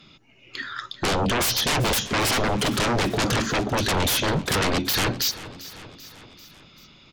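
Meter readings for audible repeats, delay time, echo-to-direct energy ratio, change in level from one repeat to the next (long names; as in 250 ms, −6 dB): 4, 390 ms, −15.0 dB, −4.5 dB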